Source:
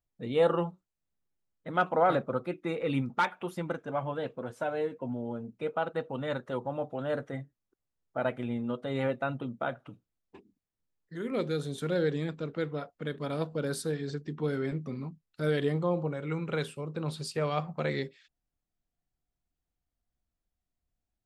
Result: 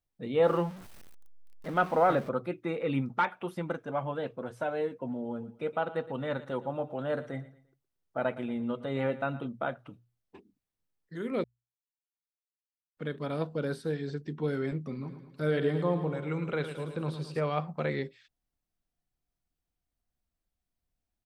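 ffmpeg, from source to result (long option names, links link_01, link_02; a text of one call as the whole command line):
ffmpeg -i in.wav -filter_complex "[0:a]asettb=1/sr,asplit=3[link_01][link_02][link_03];[link_01]atrim=end=0.444[link_04];[link_02]atrim=start=0.44:end=2.29,asetpts=PTS-STARTPTS,afade=type=in:duration=0.004:curve=qsin,afade=type=out:start_time=1.846:duration=0.004:curve=qsin,aeval=exprs='val(0)+0.5*0.01*sgn(val(0))':channel_layout=same[link_05];[link_03]atrim=start=2.286[link_06];[link_04][link_05]acrossfade=duration=0.004:curve1=hsin:curve2=qsin[link_07];[link_07][link_06]acrossfade=duration=0.004:curve1=qsin:curve2=hsin,asplit=3[link_08][link_09][link_10];[link_08]afade=type=out:start_time=5.07:duration=0.02[link_11];[link_09]aecho=1:1:115|230|345:0.141|0.0494|0.0173,afade=type=in:start_time=5.07:duration=0.02,afade=type=out:start_time=9.46:duration=0.02[link_12];[link_10]afade=type=in:start_time=9.46:duration=0.02[link_13];[link_11][link_12][link_13]amix=inputs=3:normalize=0,asettb=1/sr,asplit=3[link_14][link_15][link_16];[link_14]atrim=end=13.704[link_17];[link_15]atrim=start=13.7:end=14.54,asetpts=PTS-STARTPTS,afade=type=in:duration=0.004:curve=qsin,afade=type=out:start_time=0.836:duration=0.004:curve=qsin,bandreject=frequency=1200:width=8.9[link_18];[link_16]atrim=start=14.536[link_19];[link_17][link_18]acrossfade=duration=0.004:curve1=hsin:curve2=qsin[link_20];[link_20][link_19]acrossfade=duration=0.004:curve1=qsin:curve2=hsin,asplit=3[link_21][link_22][link_23];[link_21]afade=type=out:start_time=15.04:duration=0.02[link_24];[link_22]aecho=1:1:109|218|327|436|545|654:0.316|0.174|0.0957|0.0526|0.0289|0.0159,afade=type=in:start_time=15.04:duration=0.02,afade=type=out:start_time=17.39:duration=0.02[link_25];[link_23]afade=type=in:start_time=17.39:duration=0.02[link_26];[link_24][link_25][link_26]amix=inputs=3:normalize=0,asplit=3[link_27][link_28][link_29];[link_27]atrim=end=11.44,asetpts=PTS-STARTPTS,afade=type=out:start_time=11.436:duration=0.004:curve=hsin[link_30];[link_28]atrim=start=11.44:end=12.97,asetpts=PTS-STARTPTS,volume=0[link_31];[link_29]atrim=start=12.97,asetpts=PTS-STARTPTS,afade=type=in:duration=0.004:curve=hsin[link_32];[link_30][link_31][link_32]concat=n=3:v=0:a=1,bandreject=frequency=60:width_type=h:width=6,bandreject=frequency=120:width_type=h:width=6,acrossover=split=3200[link_33][link_34];[link_34]acompressor=threshold=-54dB:ratio=4:attack=1:release=60[link_35];[link_33][link_35]amix=inputs=2:normalize=0,bandreject=frequency=7000:width=13" out.wav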